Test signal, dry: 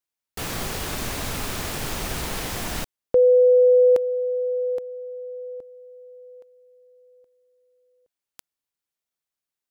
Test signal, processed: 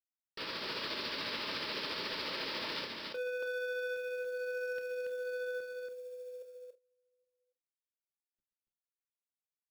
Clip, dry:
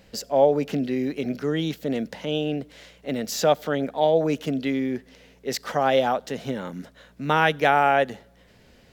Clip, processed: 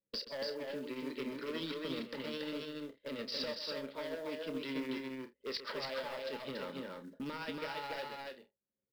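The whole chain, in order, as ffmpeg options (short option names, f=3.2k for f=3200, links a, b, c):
-filter_complex "[0:a]highpass=310,agate=range=-33dB:threshold=-52dB:ratio=3:release=126:detection=peak,anlmdn=0.251,adynamicequalizer=threshold=0.0158:dfrequency=1300:dqfactor=1.2:tfrequency=1300:tqfactor=1.2:attack=5:release=100:ratio=0.4:range=2:mode=cutabove:tftype=bell,acompressor=threshold=-31dB:ratio=6:attack=0.34:release=840:knee=1:detection=rms,aresample=11025,asoftclip=type=hard:threshold=-37.5dB,aresample=44100,tremolo=f=14:d=0.35,crystalizer=i=2:c=0,acrusher=bits=6:mode=log:mix=0:aa=0.000001,asuperstop=centerf=740:order=4:qfactor=4.2,asplit=2[a][b];[b]adelay=30,volume=-10.5dB[c];[a][c]amix=inputs=2:normalize=0,aecho=1:1:129|282|329:0.251|0.708|0.158,volume=1dB"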